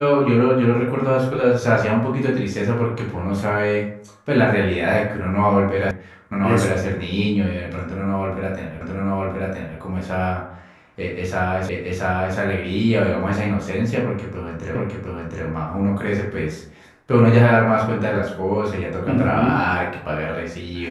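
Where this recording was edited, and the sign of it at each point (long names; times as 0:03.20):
0:05.91: cut off before it has died away
0:08.81: the same again, the last 0.98 s
0:11.69: the same again, the last 0.68 s
0:14.75: the same again, the last 0.71 s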